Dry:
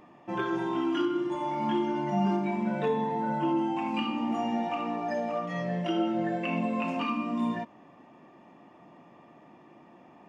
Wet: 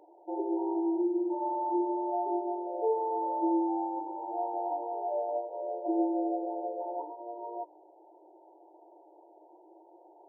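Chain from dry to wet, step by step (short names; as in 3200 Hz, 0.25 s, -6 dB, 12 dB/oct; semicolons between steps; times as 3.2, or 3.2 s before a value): hum 50 Hz, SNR 17 dB; FFT band-pass 310–970 Hz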